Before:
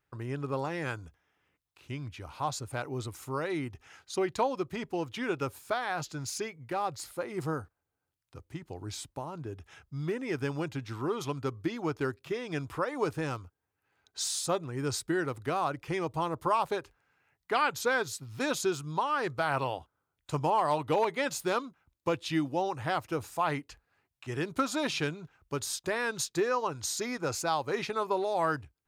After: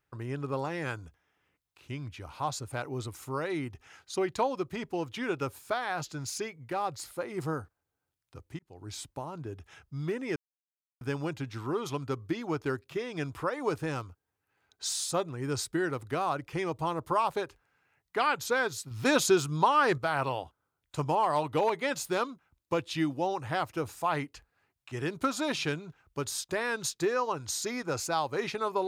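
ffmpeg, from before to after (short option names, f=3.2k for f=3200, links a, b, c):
-filter_complex "[0:a]asplit=5[a][b][c][d][e];[a]atrim=end=8.59,asetpts=PTS-STARTPTS,afade=t=out:st=8.586:d=0.004:c=hsin[f];[b]atrim=start=8.59:end=10.36,asetpts=PTS-STARTPTS,afade=t=in:d=0.41,afade=t=out:st=1.766:d=0.004:c=hsin,apad=pad_dur=0.65[g];[c]atrim=start=10.36:end=18.262,asetpts=PTS-STARTPTS,afade=t=in:d=0.004:c=hsin[h];[d]atrim=start=18.258:end=19.332,asetpts=PTS-STARTPTS,volume=6dB[i];[e]atrim=start=19.328[j];[f][g][h]concat=n=3:v=0:a=1[k];[k][i]acrossfade=d=0.004:c1=hsin:c2=hsin[l];[l][j]acrossfade=d=0.004:c1=hsin:c2=hsin"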